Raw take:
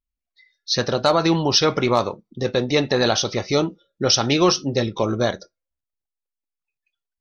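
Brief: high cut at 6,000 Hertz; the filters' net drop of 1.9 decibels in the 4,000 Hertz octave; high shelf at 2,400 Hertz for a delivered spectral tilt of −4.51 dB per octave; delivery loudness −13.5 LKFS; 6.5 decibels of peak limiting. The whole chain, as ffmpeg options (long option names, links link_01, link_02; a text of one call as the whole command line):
ffmpeg -i in.wav -af "lowpass=6000,highshelf=frequency=2400:gain=4,equalizer=frequency=4000:width_type=o:gain=-5,volume=9.5dB,alimiter=limit=-2dB:level=0:latency=1" out.wav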